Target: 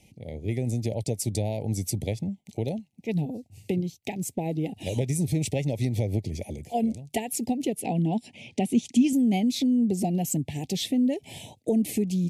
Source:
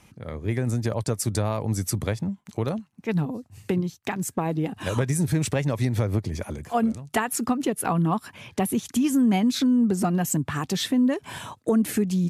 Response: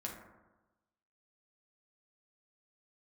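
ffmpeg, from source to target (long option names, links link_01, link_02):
-filter_complex "[0:a]asuperstop=centerf=1300:order=8:qfactor=1,asettb=1/sr,asplit=3[link_01][link_02][link_03];[link_01]atrim=end=7.804[link_04];[link_02]atrim=start=7.8:end=9.13,asetpts=PTS-STARTPTS,afade=type=in:duration=0.004:curve=qsin,afade=type=out:start_time=1.326:duration=0.004:curve=qsin,highpass=110,equalizer=frequency=240:width_type=q:width=4:gain=7,equalizer=frequency=1400:width_type=q:width=4:gain=6,equalizer=frequency=2700:width_type=q:width=4:gain=3,lowpass=frequency=9200:width=0.5412,lowpass=frequency=9200:width=1.3066[link_05];[link_03]atrim=start=9.126[link_06];[link_04][link_05]acrossfade=duration=0.004:curve1=hsin:curve2=qsin[link_07];[link_07][link_06]acrossfade=duration=0.004:curve1=qsin:curve2=hsin,volume=-2.5dB"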